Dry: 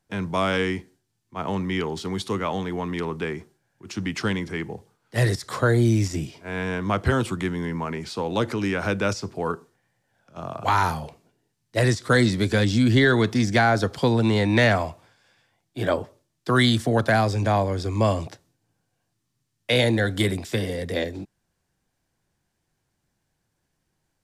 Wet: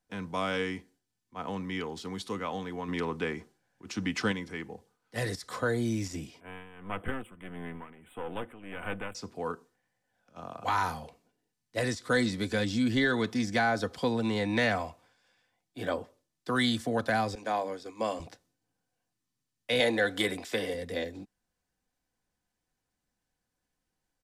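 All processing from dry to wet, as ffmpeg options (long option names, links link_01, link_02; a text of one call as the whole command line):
ffmpeg -i in.wav -filter_complex "[0:a]asettb=1/sr,asplit=3[link_01][link_02][link_03];[link_01]atrim=end=2.884[link_04];[link_02]atrim=start=2.88:end=4.32,asetpts=PTS-STARTPTS,afade=type=in:duration=0.004:curve=qsin,afade=type=out:start_time=1.436:duration=0.004:curve=qsin,highshelf=frequency=9900:gain=-5.5,acontrast=27[link_05];[link_03]atrim=start=4.316[link_06];[link_04][link_05]acrossfade=duration=0.004:curve1=hsin:curve2=qsin[link_07];[link_07][link_06]acrossfade=duration=0.004:curve1=qsin:curve2=hsin,asettb=1/sr,asplit=3[link_08][link_09][link_10];[link_08]atrim=end=6.404[link_11];[link_09]atrim=start=6.4:end=9.15,asetpts=PTS-STARTPTS,afade=type=in:duration=0.004:curve=qsin,afade=type=out:start_time=2.746:duration=0.004:curve=qsin,aeval=exprs='clip(val(0),-1,0.0224)':channel_layout=same,tremolo=f=1.6:d=0.77,asuperstop=centerf=5300:order=12:qfactor=1.1[link_12];[link_10]atrim=start=9.146[link_13];[link_11][link_12]acrossfade=duration=0.004:curve1=hsin:curve2=qsin[link_14];[link_14][link_13]acrossfade=duration=0.004:curve1=qsin:curve2=hsin,asettb=1/sr,asplit=3[link_15][link_16][link_17];[link_15]atrim=end=17.354[link_18];[link_16]atrim=start=17.35:end=18.2,asetpts=PTS-STARTPTS,afade=type=in:duration=0.004:curve=qsin,afade=type=out:start_time=0.846:duration=0.004:curve=qsin,highpass=270,bandreject=frequency=50:width_type=h:width=6,bandreject=frequency=100:width_type=h:width=6,bandreject=frequency=150:width_type=h:width=6,bandreject=frequency=200:width_type=h:width=6,bandreject=frequency=250:width_type=h:width=6,bandreject=frequency=300:width_type=h:width=6,bandreject=frequency=350:width_type=h:width=6,agate=range=-33dB:threshold=-30dB:ratio=3:release=100:detection=peak[link_19];[link_17]atrim=start=18.196[link_20];[link_18][link_19]acrossfade=duration=0.004:curve1=hsin:curve2=qsin[link_21];[link_21][link_20]acrossfade=duration=0.004:curve1=qsin:curve2=hsin,asettb=1/sr,asplit=3[link_22][link_23][link_24];[link_22]atrim=end=19.804[link_25];[link_23]atrim=start=19.8:end=20.74,asetpts=PTS-STARTPTS,afade=type=in:duration=0.004:curve=qsin,afade=type=out:start_time=0.936:duration=0.004:curve=qsin,acontrast=47,bass=frequency=250:gain=-12,treble=frequency=4000:gain=-4[link_26];[link_24]atrim=start=20.736[link_27];[link_25][link_26]acrossfade=duration=0.004:curve1=hsin:curve2=qsin[link_28];[link_28][link_27]acrossfade=duration=0.004:curve1=qsin:curve2=hsin,equalizer=frequency=130:width=0.59:gain=-3,aecho=1:1:4:0.39,volume=-8dB" out.wav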